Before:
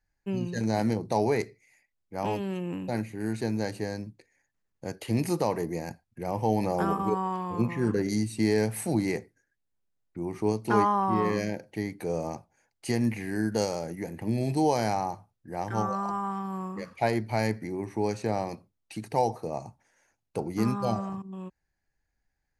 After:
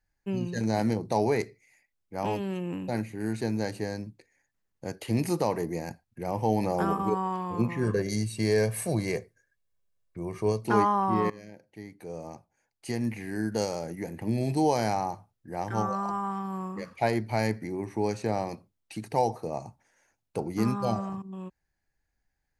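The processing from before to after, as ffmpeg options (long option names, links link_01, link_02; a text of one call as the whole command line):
ffmpeg -i in.wav -filter_complex "[0:a]asettb=1/sr,asplit=3[link_01][link_02][link_03];[link_01]atrim=end=7.834[link_04];[link_02]atrim=start=7.83:end=10.64,asetpts=PTS-STARTPTS,afade=type=in:duration=0.004:curve=qsin,afade=type=out:start_time=2.806:duration=0.004:curve=qsin,aecho=1:1:1.8:0.6,atrim=end_sample=123921[link_05];[link_03]atrim=start=10.636[link_06];[link_04][link_05]acrossfade=duration=0.004:curve1=hsin:curve2=qsin[link_07];[link_07][link_06]acrossfade=duration=0.004:curve1=qsin:curve2=hsin,asplit=2[link_08][link_09];[link_08]atrim=end=11.3,asetpts=PTS-STARTPTS,afade=type=out:start_time=11.296:duration=0.004:curve=hsin:silence=0.105925[link_10];[link_09]atrim=start=11.3,asetpts=PTS-STARTPTS,afade=type=in:duration=2.79:silence=0.105925[link_11];[link_10][link_11]concat=n=2:v=0:a=1" out.wav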